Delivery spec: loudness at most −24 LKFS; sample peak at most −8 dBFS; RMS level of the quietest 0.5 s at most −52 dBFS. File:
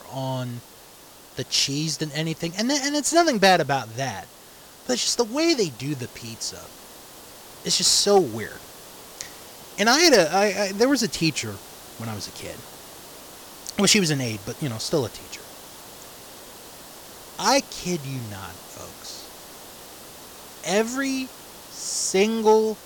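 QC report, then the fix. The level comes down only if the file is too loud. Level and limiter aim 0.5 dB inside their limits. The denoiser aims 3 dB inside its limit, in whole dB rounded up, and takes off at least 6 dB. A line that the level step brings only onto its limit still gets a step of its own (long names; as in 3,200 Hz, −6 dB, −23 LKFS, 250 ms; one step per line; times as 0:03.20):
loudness −22.0 LKFS: out of spec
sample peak −6.5 dBFS: out of spec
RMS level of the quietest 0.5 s −47 dBFS: out of spec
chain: broadband denoise 6 dB, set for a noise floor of −47 dBFS
level −2.5 dB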